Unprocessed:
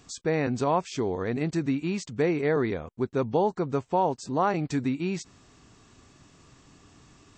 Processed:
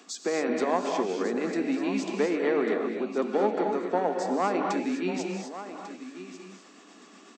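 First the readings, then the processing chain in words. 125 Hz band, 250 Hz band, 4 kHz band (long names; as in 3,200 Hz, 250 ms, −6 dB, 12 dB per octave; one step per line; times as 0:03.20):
−12.5 dB, 0.0 dB, +1.5 dB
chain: one-sided soft clipper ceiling −17 dBFS
Butterworth high-pass 190 Hz 72 dB per octave
bass and treble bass −4 dB, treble −4 dB
in parallel at +1 dB: downward compressor, threshold −39 dBFS, peak gain reduction 17 dB
on the sum: amplitude tremolo 8.1 Hz, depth 39%
notch filter 940 Hz, Q 13
on a send: single-tap delay 1,145 ms −12.5 dB
on the sum: reverb whose tail is shaped and stops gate 280 ms rising, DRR 2.5 dB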